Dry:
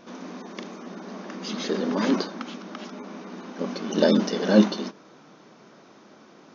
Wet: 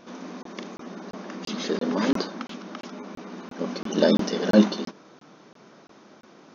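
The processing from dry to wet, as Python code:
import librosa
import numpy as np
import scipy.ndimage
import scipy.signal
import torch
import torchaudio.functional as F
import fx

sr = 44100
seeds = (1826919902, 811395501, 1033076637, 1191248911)

y = fx.buffer_crackle(x, sr, first_s=0.43, period_s=0.34, block=1024, kind='zero')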